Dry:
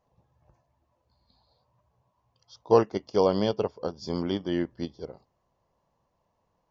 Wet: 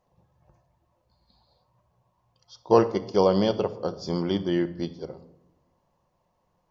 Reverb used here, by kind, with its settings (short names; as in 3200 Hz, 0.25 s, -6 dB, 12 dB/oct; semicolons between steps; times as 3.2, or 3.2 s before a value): shoebox room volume 2300 m³, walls furnished, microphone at 0.95 m; gain +2 dB